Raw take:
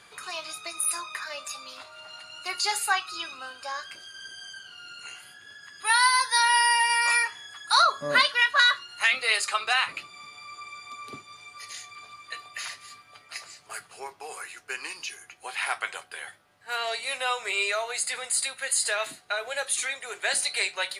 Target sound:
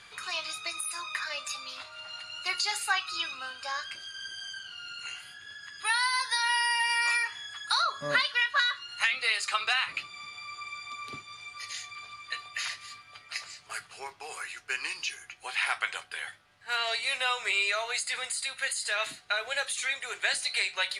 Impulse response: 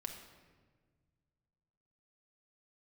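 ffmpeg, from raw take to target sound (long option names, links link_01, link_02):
-af "tiltshelf=frequency=1200:gain=-8.5,acompressor=threshold=-21dB:ratio=6,aemphasis=mode=reproduction:type=bsi"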